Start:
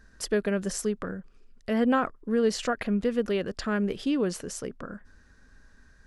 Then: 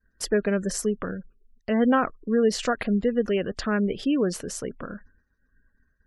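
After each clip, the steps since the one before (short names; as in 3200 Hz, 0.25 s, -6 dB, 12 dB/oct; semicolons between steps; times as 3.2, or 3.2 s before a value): spectral gate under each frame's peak -30 dB strong; expander -44 dBFS; gain +3 dB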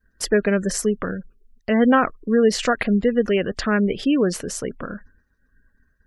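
dynamic EQ 2100 Hz, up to +4 dB, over -47 dBFS, Q 2; gain +4.5 dB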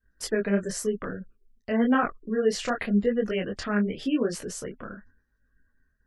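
detuned doubles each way 32 cents; gain -3.5 dB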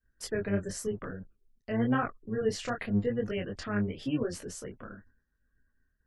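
octaver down 1 oct, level -5 dB; gain -6 dB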